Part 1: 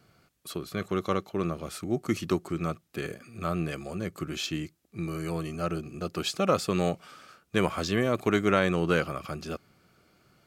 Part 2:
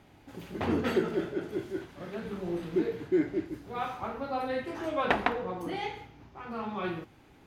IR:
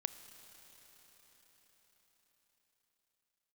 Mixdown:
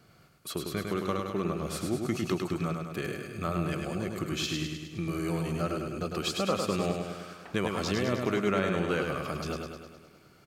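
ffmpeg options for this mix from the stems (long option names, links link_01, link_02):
-filter_complex "[0:a]acompressor=threshold=-33dB:ratio=2,volume=2dB,asplit=3[link_01][link_02][link_03];[link_02]volume=-4.5dB[link_04];[1:a]adelay=2350,volume=-19dB[link_05];[link_03]apad=whole_len=432701[link_06];[link_05][link_06]sidechaincompress=threshold=-59dB:ratio=8:attack=16:release=223[link_07];[link_04]aecho=0:1:103|206|309|412|515|618|721|824|927|1030:1|0.6|0.36|0.216|0.13|0.0778|0.0467|0.028|0.0168|0.0101[link_08];[link_01][link_07][link_08]amix=inputs=3:normalize=0"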